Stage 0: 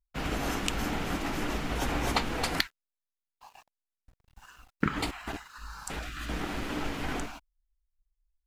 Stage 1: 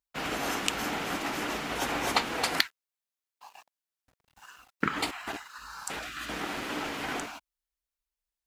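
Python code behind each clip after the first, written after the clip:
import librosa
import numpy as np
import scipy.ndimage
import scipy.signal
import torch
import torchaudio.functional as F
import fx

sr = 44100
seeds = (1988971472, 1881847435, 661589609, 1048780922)

y = fx.highpass(x, sr, hz=430.0, slope=6)
y = y * 10.0 ** (3.0 / 20.0)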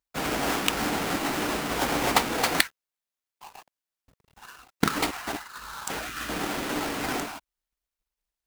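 y = fx.halfwave_hold(x, sr)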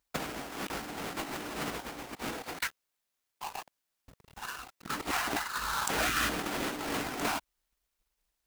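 y = fx.over_compress(x, sr, threshold_db=-34.0, ratio=-0.5)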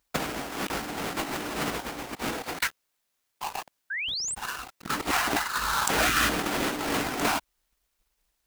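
y = fx.spec_paint(x, sr, seeds[0], shape='rise', start_s=3.9, length_s=0.45, low_hz=1500.0, high_hz=9100.0, level_db=-37.0)
y = y * 10.0 ** (6.0 / 20.0)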